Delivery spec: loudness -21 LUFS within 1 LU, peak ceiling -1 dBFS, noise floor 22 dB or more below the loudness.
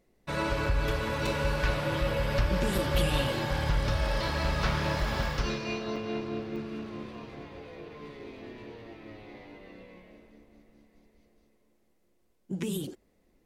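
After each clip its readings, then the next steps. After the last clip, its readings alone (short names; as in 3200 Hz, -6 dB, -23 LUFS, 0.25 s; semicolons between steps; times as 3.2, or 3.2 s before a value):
dropouts 5; longest dropout 3.6 ms; loudness -30.5 LUFS; peak -15.0 dBFS; loudness target -21.0 LUFS
-> interpolate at 0.66/1.27/2.78/5.96/6.56, 3.6 ms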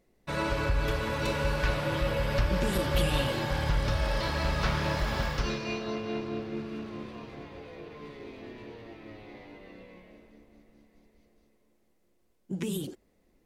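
dropouts 0; loudness -30.5 LUFS; peak -15.0 dBFS; loudness target -21.0 LUFS
-> gain +9.5 dB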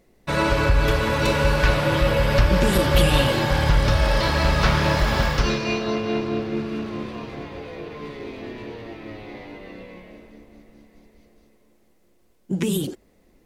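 loudness -21.0 LUFS; peak -5.5 dBFS; noise floor -59 dBFS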